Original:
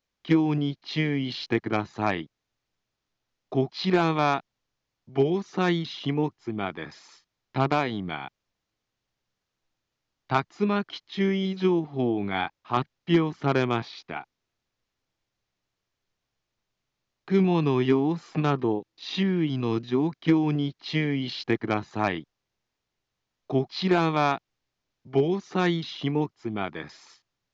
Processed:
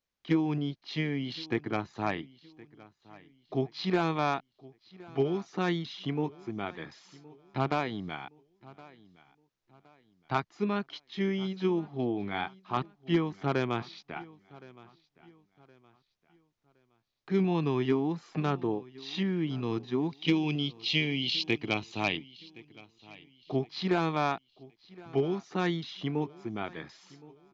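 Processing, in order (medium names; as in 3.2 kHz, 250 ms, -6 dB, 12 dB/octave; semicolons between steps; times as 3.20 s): 20.10–22.17 s: resonant high shelf 2.1 kHz +7.5 dB, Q 3; feedback delay 1067 ms, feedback 35%, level -21.5 dB; trim -5.5 dB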